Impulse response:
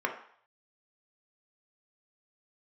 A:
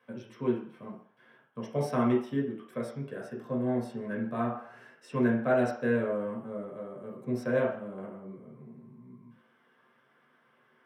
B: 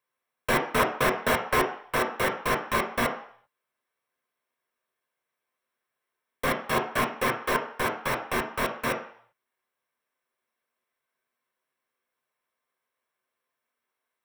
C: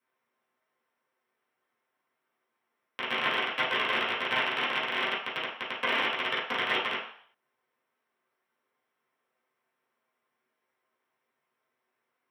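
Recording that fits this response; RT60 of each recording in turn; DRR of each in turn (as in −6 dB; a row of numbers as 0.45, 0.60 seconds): B; 0.60, 0.60, 0.60 seconds; −3.5, 2.0, −10.5 decibels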